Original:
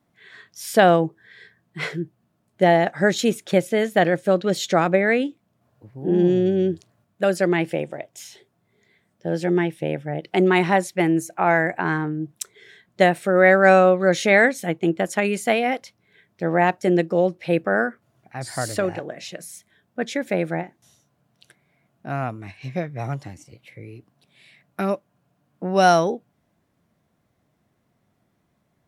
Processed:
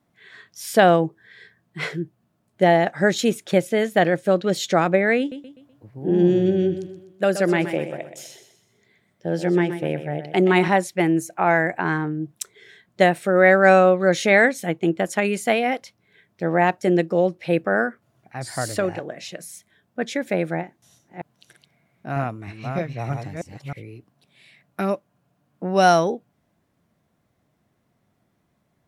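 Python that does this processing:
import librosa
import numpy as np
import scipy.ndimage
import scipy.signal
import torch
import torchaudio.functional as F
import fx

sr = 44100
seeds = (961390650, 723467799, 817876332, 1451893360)

y = fx.echo_feedback(x, sr, ms=125, feedback_pct=41, wet_db=-10.5, at=(5.19, 10.68))
y = fx.reverse_delay(y, sr, ms=314, wet_db=-4, at=(20.59, 23.83))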